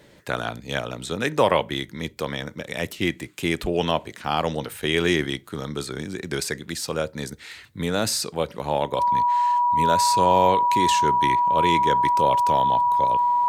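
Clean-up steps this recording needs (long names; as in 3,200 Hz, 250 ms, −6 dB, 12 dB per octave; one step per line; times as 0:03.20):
notch filter 970 Hz, Q 30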